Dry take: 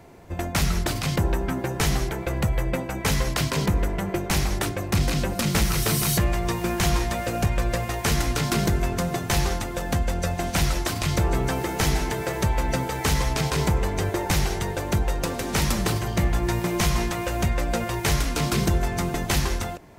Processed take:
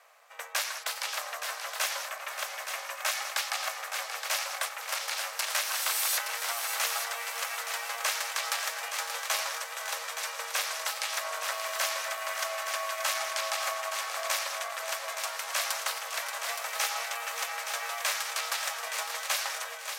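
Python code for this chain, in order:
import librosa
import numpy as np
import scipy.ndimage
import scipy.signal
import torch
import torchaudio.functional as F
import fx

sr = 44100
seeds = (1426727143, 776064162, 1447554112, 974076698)

y = scipy.signal.sosfilt(scipy.signal.butter(16, 780.0, 'highpass', fs=sr, output='sos'), x)
y = y * np.sin(2.0 * np.pi * 230.0 * np.arange(len(y)) / sr)
y = fx.echo_heads(y, sr, ms=290, heads='second and third', feedback_pct=42, wet_db=-8.0)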